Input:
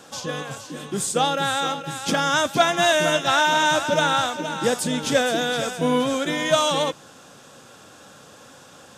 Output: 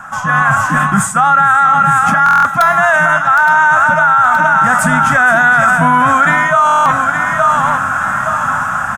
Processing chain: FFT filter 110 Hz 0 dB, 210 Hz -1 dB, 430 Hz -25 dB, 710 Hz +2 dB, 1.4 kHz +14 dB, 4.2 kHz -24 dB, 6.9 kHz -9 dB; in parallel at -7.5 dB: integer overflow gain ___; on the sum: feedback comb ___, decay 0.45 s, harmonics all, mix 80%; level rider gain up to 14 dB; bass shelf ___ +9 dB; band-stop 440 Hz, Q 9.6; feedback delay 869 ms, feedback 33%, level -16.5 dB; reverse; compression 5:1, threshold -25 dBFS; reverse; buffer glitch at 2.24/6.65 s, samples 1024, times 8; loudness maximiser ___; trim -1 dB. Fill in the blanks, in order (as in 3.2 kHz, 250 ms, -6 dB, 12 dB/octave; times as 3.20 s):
0.5 dB, 650 Hz, 74 Hz, +21.5 dB